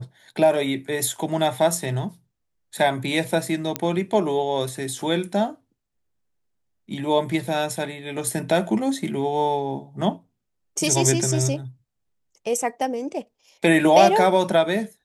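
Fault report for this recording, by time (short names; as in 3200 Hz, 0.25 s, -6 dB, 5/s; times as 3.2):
3.76 pop -6 dBFS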